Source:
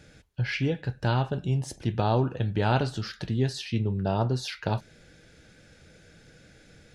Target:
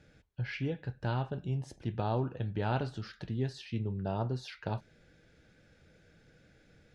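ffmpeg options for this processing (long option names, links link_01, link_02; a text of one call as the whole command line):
ffmpeg -i in.wav -af "lowpass=frequency=3100:poles=1,volume=-7.5dB" out.wav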